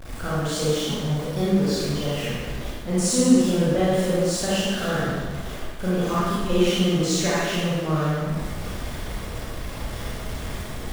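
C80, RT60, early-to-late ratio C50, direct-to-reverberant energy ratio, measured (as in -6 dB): -1.0 dB, 1.5 s, -4.5 dB, -9.5 dB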